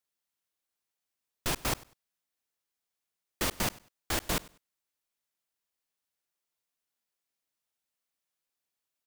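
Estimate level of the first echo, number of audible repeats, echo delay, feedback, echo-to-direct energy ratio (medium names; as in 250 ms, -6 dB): -22.0 dB, 2, 98 ms, 24%, -22.0 dB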